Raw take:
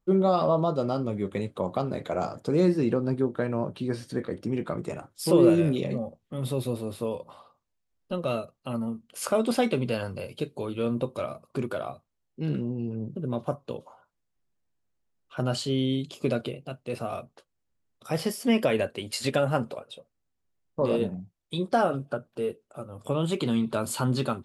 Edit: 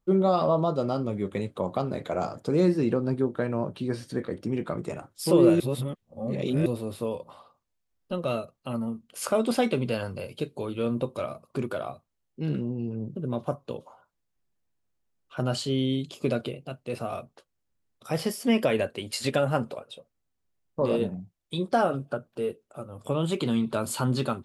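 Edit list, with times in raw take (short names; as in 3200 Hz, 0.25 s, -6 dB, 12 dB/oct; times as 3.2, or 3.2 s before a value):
5.6–6.66 reverse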